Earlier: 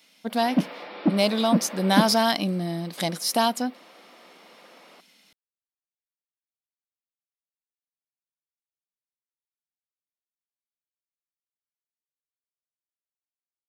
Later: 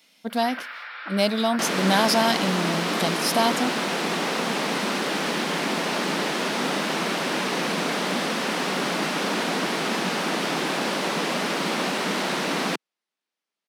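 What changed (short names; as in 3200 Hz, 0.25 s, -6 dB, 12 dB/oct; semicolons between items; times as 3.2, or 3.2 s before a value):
first sound: add resonant high-pass 1500 Hz, resonance Q 4.6; second sound: unmuted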